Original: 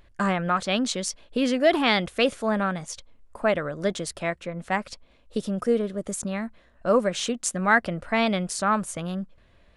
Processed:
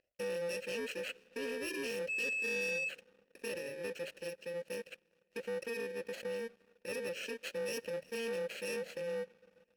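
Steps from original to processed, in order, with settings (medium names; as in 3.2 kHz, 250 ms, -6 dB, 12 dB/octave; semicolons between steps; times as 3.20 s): bit-reversed sample order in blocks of 64 samples; vowel filter e; band-stop 3.5 kHz, Q 18; peak limiter -34 dBFS, peak gain reduction 9.5 dB; hum notches 50/100/150 Hz; on a send at -21.5 dB: reverberation RT60 4.3 s, pre-delay 14 ms; 2.08–2.88 s: on the sum: whistle 2.6 kHz -39 dBFS; waveshaping leveller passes 2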